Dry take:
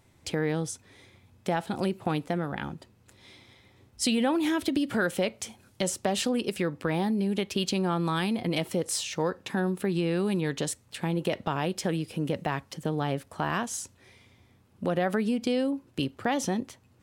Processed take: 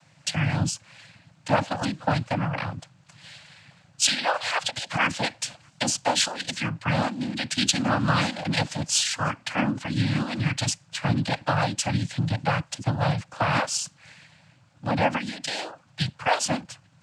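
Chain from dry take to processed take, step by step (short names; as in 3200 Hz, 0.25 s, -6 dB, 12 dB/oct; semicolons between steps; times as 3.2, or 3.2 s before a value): Chebyshev band-stop 170–670 Hz, order 3; dynamic EQ 4800 Hz, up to +7 dB, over -57 dBFS, Q 6.8; noise vocoder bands 8; gain +8 dB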